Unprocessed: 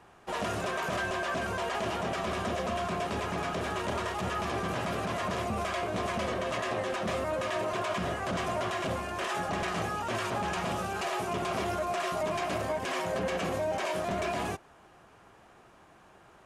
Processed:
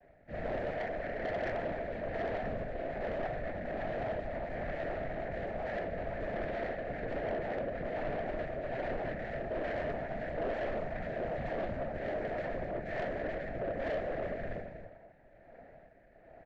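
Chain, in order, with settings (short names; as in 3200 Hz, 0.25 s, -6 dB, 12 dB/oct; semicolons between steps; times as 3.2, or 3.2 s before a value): in parallel at -2 dB: limiter -28 dBFS, peak gain reduction 7.5 dB; on the sum: shoebox room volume 540 m³, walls furnished, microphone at 4.5 m; rotary speaker horn 1.2 Hz; echo 0.245 s -11 dB; noise vocoder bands 8; double band-pass 1400 Hz, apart 1.1 oct; frequency shift -290 Hz; tilt -3 dB/oct; soft clip -27.5 dBFS, distortion -14 dB; gain -2 dB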